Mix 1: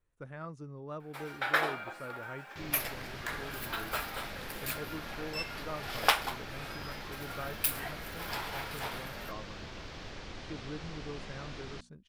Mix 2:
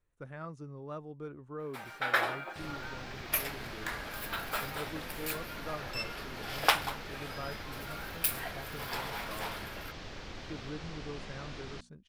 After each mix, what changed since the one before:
first sound: entry +0.60 s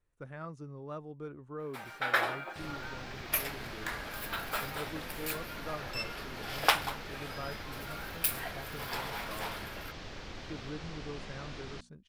none

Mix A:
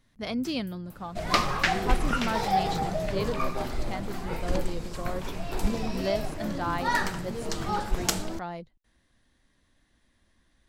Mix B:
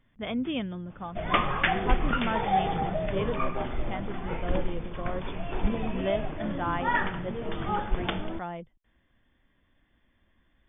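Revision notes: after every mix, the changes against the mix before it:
master: add brick-wall FIR low-pass 3600 Hz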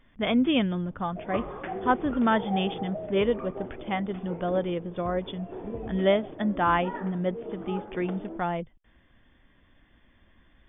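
speech +7.5 dB; second sound: add band-pass 410 Hz, Q 1.6

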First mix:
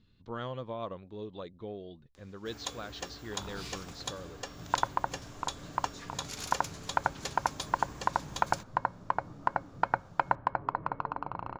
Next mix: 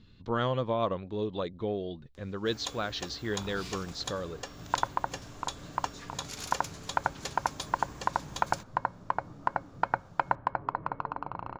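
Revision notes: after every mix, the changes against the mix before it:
speech +9.0 dB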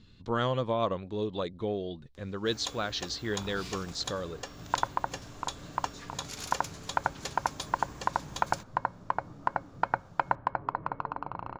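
speech: remove air absorption 82 m

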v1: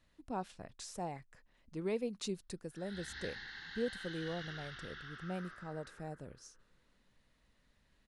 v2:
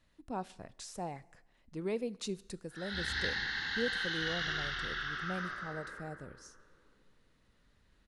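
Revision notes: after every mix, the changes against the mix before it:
background +10.0 dB; reverb: on, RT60 1.0 s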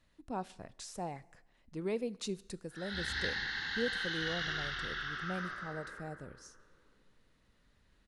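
background: send -9.5 dB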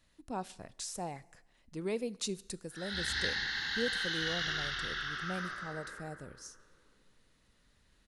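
master: add high shelf 4400 Hz +9.5 dB

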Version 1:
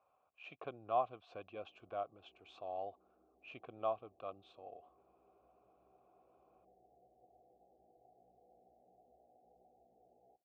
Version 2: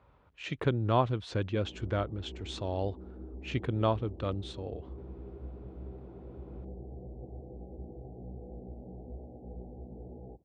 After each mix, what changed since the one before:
background +6.5 dB; master: remove vowel filter a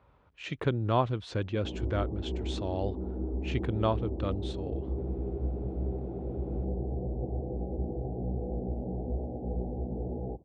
background +11.0 dB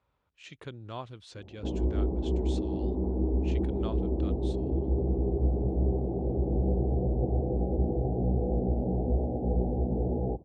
speech: add pre-emphasis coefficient 0.8; background +6.0 dB

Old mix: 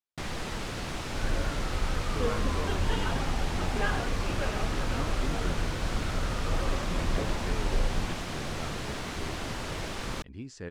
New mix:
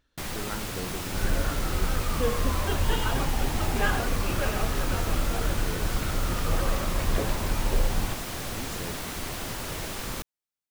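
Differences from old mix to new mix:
speech: entry -1.80 s; second sound +3.5 dB; master: remove air absorption 68 m

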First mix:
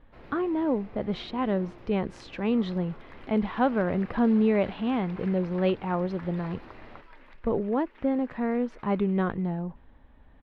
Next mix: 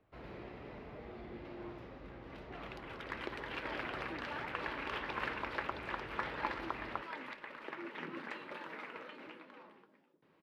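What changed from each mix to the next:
speech: muted; second sound +10.0 dB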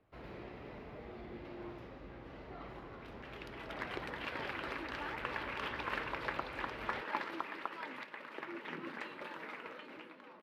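second sound: entry +0.70 s; master: add high shelf 9000 Hz +6 dB

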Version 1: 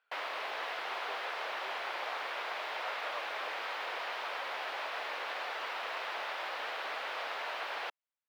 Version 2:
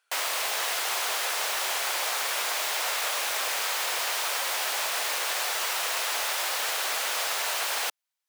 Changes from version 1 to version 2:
background +4.0 dB; master: remove air absorption 360 m

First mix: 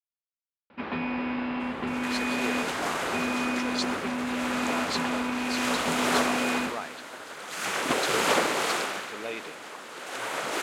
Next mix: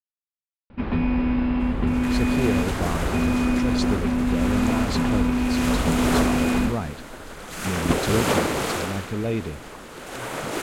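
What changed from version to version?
speech: remove HPF 690 Hz 6 dB/oct; master: remove weighting filter A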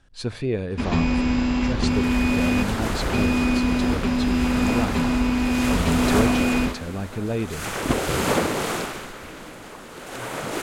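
speech: entry -1.95 s; first sound: remove air absorption 430 m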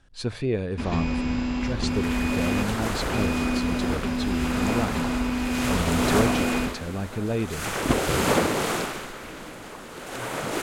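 speech: send -6.5 dB; first sound -5.0 dB

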